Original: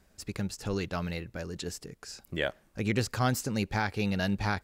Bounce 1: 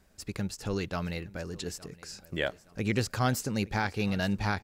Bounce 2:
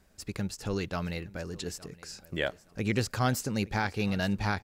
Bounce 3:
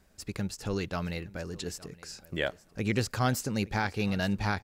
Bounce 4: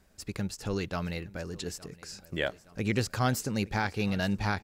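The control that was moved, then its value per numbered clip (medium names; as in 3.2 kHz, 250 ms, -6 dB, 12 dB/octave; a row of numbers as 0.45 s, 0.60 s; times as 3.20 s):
feedback delay, feedback: 39%, 25%, 15%, 58%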